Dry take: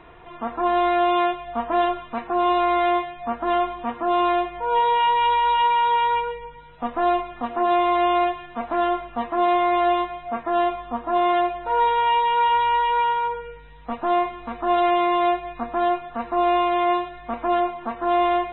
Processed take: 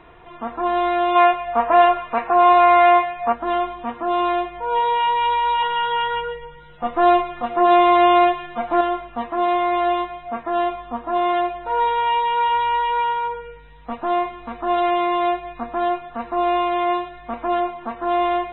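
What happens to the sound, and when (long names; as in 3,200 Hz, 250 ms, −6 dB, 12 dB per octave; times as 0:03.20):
0:01.15–0:03.33: gain on a spectral selection 390–2,800 Hz +8 dB
0:05.62–0:08.81: comb filter 5.7 ms, depth 96%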